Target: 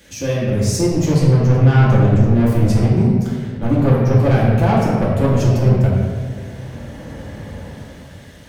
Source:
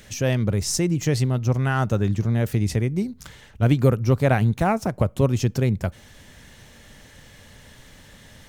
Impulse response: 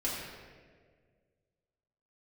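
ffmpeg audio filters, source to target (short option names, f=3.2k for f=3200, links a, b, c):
-filter_complex "[0:a]highpass=68,acrossover=split=1200[a][b];[a]dynaudnorm=f=110:g=17:m=15dB[c];[c][b]amix=inputs=2:normalize=0,asoftclip=type=tanh:threshold=-14dB[d];[1:a]atrim=start_sample=2205[e];[d][e]afir=irnorm=-1:irlink=0,volume=-1.5dB"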